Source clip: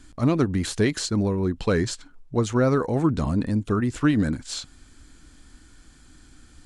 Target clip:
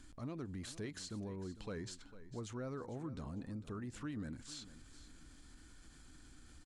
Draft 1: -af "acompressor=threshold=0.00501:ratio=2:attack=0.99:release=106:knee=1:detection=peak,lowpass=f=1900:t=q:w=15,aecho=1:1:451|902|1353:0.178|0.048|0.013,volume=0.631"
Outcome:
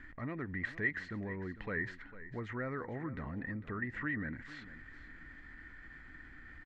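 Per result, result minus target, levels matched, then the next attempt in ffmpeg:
2 kHz band +12.5 dB; compression: peak gain reduction -3 dB
-af "acompressor=threshold=0.00501:ratio=2:attack=0.99:release=106:knee=1:detection=peak,aecho=1:1:451|902|1353:0.178|0.048|0.013,volume=0.631"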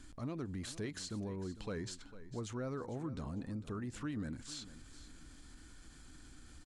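compression: peak gain reduction -3 dB
-af "acompressor=threshold=0.00251:ratio=2:attack=0.99:release=106:knee=1:detection=peak,aecho=1:1:451|902|1353:0.178|0.048|0.013,volume=0.631"

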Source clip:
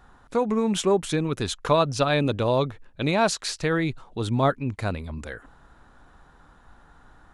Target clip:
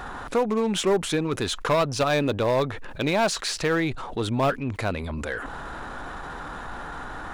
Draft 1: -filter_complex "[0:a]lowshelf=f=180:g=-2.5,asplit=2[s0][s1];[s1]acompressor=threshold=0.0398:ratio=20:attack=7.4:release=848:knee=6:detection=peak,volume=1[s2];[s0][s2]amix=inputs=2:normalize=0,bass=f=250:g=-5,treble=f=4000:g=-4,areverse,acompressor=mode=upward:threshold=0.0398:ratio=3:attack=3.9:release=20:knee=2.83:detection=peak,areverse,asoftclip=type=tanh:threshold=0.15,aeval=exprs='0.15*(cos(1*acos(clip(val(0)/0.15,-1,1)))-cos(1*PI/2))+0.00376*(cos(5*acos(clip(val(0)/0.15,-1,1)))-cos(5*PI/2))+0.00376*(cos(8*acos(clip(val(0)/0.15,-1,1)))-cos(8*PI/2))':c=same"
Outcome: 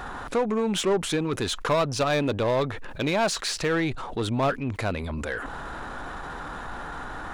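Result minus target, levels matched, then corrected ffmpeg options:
saturation: distortion +16 dB
-filter_complex "[0:a]lowshelf=f=180:g=-2.5,asplit=2[s0][s1];[s1]acompressor=threshold=0.0398:ratio=20:attack=7.4:release=848:knee=6:detection=peak,volume=1[s2];[s0][s2]amix=inputs=2:normalize=0,bass=f=250:g=-5,treble=f=4000:g=-4,areverse,acompressor=mode=upward:threshold=0.0398:ratio=3:attack=3.9:release=20:knee=2.83:detection=peak,areverse,asoftclip=type=tanh:threshold=0.531,aeval=exprs='0.15*(cos(1*acos(clip(val(0)/0.15,-1,1)))-cos(1*PI/2))+0.00376*(cos(5*acos(clip(val(0)/0.15,-1,1)))-cos(5*PI/2))+0.00376*(cos(8*acos(clip(val(0)/0.15,-1,1)))-cos(8*PI/2))':c=same"

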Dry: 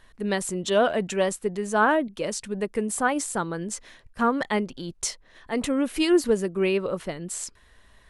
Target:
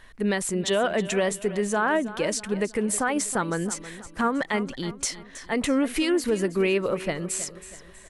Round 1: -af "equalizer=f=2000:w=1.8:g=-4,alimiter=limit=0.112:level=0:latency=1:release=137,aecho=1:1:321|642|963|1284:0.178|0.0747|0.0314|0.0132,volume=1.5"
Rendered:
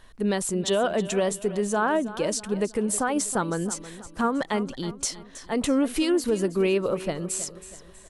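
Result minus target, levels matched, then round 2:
2 kHz band -4.0 dB
-af "equalizer=f=2000:w=1.8:g=4,alimiter=limit=0.112:level=0:latency=1:release=137,aecho=1:1:321|642|963|1284:0.178|0.0747|0.0314|0.0132,volume=1.5"

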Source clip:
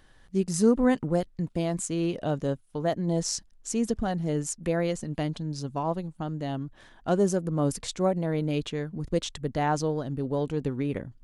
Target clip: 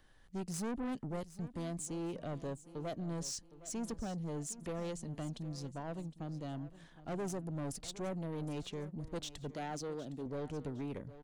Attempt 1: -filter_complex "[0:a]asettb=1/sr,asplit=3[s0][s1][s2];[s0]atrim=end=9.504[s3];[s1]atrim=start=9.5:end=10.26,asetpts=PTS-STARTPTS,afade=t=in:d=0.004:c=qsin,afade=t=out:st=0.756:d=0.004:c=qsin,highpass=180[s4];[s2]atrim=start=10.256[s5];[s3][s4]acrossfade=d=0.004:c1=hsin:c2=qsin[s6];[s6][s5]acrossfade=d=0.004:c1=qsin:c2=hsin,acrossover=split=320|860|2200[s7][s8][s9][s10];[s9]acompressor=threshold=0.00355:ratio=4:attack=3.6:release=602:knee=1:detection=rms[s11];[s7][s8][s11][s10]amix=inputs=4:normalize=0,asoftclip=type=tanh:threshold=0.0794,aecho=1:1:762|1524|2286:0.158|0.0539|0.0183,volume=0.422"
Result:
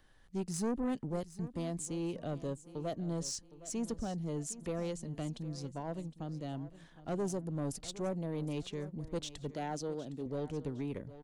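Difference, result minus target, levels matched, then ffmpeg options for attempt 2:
saturation: distortion -5 dB
-filter_complex "[0:a]asettb=1/sr,asplit=3[s0][s1][s2];[s0]atrim=end=9.504[s3];[s1]atrim=start=9.5:end=10.26,asetpts=PTS-STARTPTS,afade=t=in:d=0.004:c=qsin,afade=t=out:st=0.756:d=0.004:c=qsin,highpass=180[s4];[s2]atrim=start=10.256[s5];[s3][s4]acrossfade=d=0.004:c1=hsin:c2=qsin[s6];[s6][s5]acrossfade=d=0.004:c1=qsin:c2=hsin,acrossover=split=320|860|2200[s7][s8][s9][s10];[s9]acompressor=threshold=0.00355:ratio=4:attack=3.6:release=602:knee=1:detection=rms[s11];[s7][s8][s11][s10]amix=inputs=4:normalize=0,asoftclip=type=tanh:threshold=0.0398,aecho=1:1:762|1524|2286:0.158|0.0539|0.0183,volume=0.422"

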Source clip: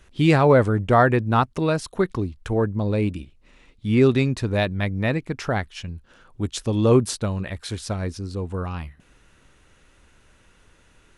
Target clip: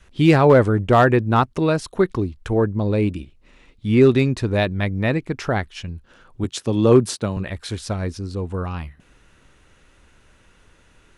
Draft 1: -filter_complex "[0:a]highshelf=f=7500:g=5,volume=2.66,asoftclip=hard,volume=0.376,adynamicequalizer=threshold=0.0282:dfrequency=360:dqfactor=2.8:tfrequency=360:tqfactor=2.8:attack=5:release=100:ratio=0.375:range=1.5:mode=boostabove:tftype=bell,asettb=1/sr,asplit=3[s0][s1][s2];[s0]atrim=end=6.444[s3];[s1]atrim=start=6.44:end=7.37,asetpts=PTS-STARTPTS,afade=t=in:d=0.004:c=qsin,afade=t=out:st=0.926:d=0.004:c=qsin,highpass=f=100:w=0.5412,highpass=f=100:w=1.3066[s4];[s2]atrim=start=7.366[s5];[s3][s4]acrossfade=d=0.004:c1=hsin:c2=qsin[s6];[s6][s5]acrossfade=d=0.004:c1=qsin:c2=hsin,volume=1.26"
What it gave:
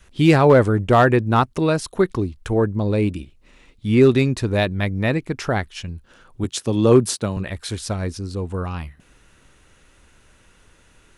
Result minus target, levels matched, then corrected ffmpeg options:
8 kHz band +4.0 dB
-filter_complex "[0:a]highshelf=f=7500:g=-3.5,volume=2.66,asoftclip=hard,volume=0.376,adynamicequalizer=threshold=0.0282:dfrequency=360:dqfactor=2.8:tfrequency=360:tqfactor=2.8:attack=5:release=100:ratio=0.375:range=1.5:mode=boostabove:tftype=bell,asettb=1/sr,asplit=3[s0][s1][s2];[s0]atrim=end=6.444[s3];[s1]atrim=start=6.44:end=7.37,asetpts=PTS-STARTPTS,afade=t=in:d=0.004:c=qsin,afade=t=out:st=0.926:d=0.004:c=qsin,highpass=f=100:w=0.5412,highpass=f=100:w=1.3066[s4];[s2]atrim=start=7.366[s5];[s3][s4]acrossfade=d=0.004:c1=hsin:c2=qsin[s6];[s6][s5]acrossfade=d=0.004:c1=qsin:c2=hsin,volume=1.26"

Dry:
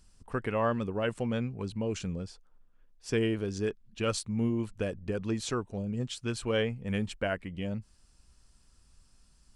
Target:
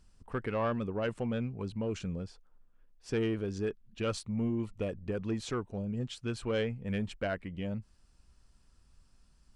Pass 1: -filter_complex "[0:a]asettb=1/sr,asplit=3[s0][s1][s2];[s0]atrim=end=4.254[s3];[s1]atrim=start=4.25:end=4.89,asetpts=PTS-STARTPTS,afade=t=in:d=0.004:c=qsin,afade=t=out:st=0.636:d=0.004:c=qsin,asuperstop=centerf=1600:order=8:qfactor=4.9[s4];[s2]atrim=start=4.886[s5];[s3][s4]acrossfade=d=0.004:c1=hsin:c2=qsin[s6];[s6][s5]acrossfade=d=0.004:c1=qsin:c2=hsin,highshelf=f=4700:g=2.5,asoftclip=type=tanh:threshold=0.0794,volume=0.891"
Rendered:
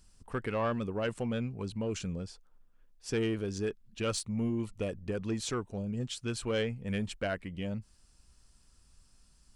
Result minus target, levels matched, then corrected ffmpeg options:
8 kHz band +7.5 dB
-filter_complex "[0:a]asettb=1/sr,asplit=3[s0][s1][s2];[s0]atrim=end=4.254[s3];[s1]atrim=start=4.25:end=4.89,asetpts=PTS-STARTPTS,afade=t=in:d=0.004:c=qsin,afade=t=out:st=0.636:d=0.004:c=qsin,asuperstop=centerf=1600:order=8:qfactor=4.9[s4];[s2]atrim=start=4.886[s5];[s3][s4]acrossfade=d=0.004:c1=hsin:c2=qsin[s6];[s6][s5]acrossfade=d=0.004:c1=qsin:c2=hsin,highshelf=f=4700:g=-9,asoftclip=type=tanh:threshold=0.0794,volume=0.891"

